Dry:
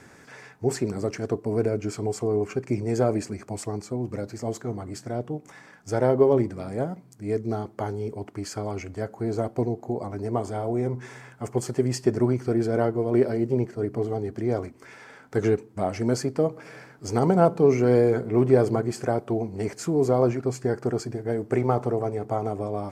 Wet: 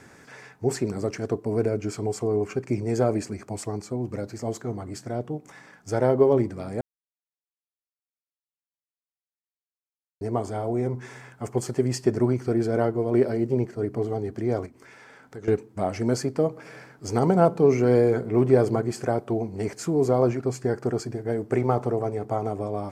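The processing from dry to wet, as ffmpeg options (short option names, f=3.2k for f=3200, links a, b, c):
-filter_complex "[0:a]asettb=1/sr,asplit=3[a][b][c];[a]atrim=end=14.664[d];[b]atrim=start=14.66:end=15.48,asetpts=PTS-STARTPTS,afade=t=in:d=0.004:c=qsin,afade=t=out:st=0.816:d=0.004:c=qsin,acompressor=threshold=-47dB:ratio=2:attack=3.2:release=140:knee=1:detection=peak[e];[c]atrim=start=15.476[f];[d][e]acrossfade=d=0.004:c1=hsin:c2=qsin[g];[g][f]acrossfade=d=0.004:c1=qsin:c2=hsin,asplit=3[h][i][j];[h]atrim=end=6.81,asetpts=PTS-STARTPTS,afade=t=out:st=6.806:d=0.004:c=hsin[k];[i]atrim=start=6.81:end=10.21,asetpts=PTS-STARTPTS,volume=0[l];[j]atrim=start=10.21,asetpts=PTS-STARTPTS,afade=t=in:d=0.004:c=hsin[m];[k][l][m]concat=n=3:v=0:a=1"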